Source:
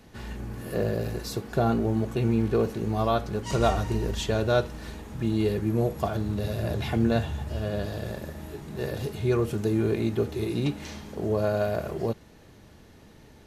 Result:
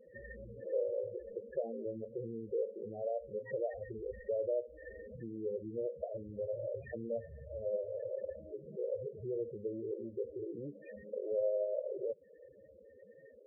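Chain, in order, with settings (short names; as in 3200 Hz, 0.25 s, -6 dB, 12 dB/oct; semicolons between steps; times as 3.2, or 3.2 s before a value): tracing distortion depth 0.083 ms; compressor 3:1, threshold -35 dBFS, peak gain reduction 13.5 dB; vocal tract filter e; low shelf 110 Hz -4 dB; loudest bins only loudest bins 8; gain +10 dB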